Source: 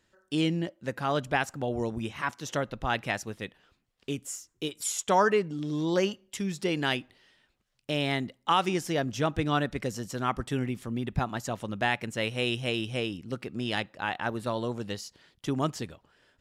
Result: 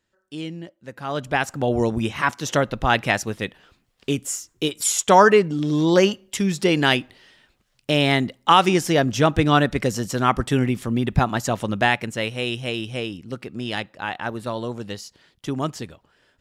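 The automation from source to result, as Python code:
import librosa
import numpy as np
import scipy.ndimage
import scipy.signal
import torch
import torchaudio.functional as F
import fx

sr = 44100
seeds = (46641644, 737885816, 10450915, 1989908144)

y = fx.gain(x, sr, db=fx.line((0.87, -5.0), (1.24, 3.5), (1.71, 10.0), (11.72, 10.0), (12.38, 3.0)))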